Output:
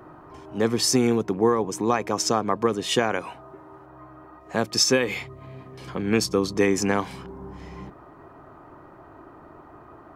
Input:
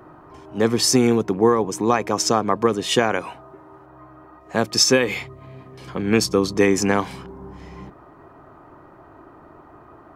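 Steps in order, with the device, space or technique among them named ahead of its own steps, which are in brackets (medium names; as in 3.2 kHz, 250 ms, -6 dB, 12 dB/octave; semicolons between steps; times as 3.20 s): parallel compression (in parallel at -5 dB: compression, threshold -32 dBFS, peak gain reduction 19.5 dB); on the sum: trim -4.5 dB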